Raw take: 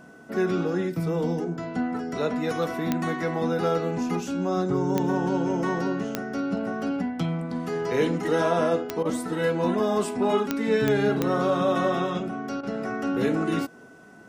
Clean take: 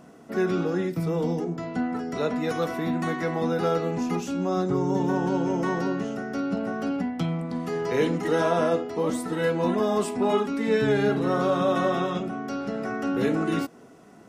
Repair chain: de-click; band-stop 1.5 kHz, Q 30; interpolate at 9.03/12.61 s, 21 ms

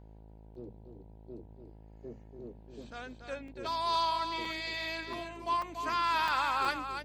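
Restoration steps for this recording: de-hum 53.7 Hz, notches 18; interpolate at 0.55/3.48/4.45/5.13/5.62/6.28/6.65 s, 3.2 ms; inverse comb 286 ms -7.5 dB

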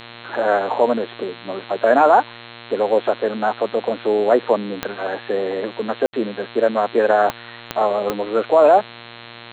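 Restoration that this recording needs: de-click; de-hum 117.5 Hz, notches 36; room tone fill 6.06–6.13 s

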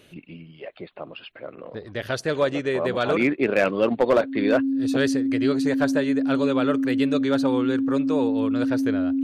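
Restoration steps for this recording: clip repair -11.5 dBFS; band-stop 270 Hz, Q 30

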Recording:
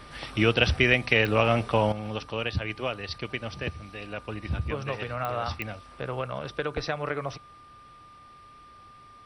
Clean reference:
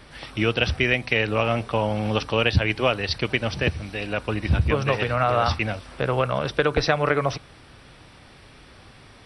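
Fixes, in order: de-click; band-stop 1.2 kHz, Q 30; gain correction +9.5 dB, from 1.92 s

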